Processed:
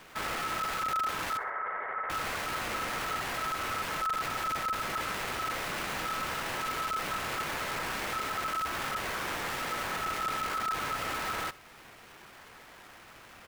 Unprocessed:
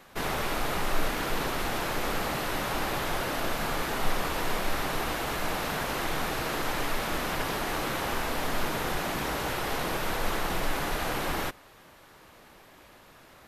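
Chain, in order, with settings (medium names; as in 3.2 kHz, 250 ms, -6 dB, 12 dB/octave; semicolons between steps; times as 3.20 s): square wave that keeps the level; 1.37–2.10 s: Chebyshev low-pass 880 Hz, order 6; in parallel at +1.5 dB: compression, threshold -36 dBFS, peak gain reduction 19.5 dB; on the sum: saturation -18.5 dBFS, distortion -16 dB; ring modulator 1.3 kHz; on a send: feedback delay 63 ms, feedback 36%, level -20 dB; on the sum: trim -7 dB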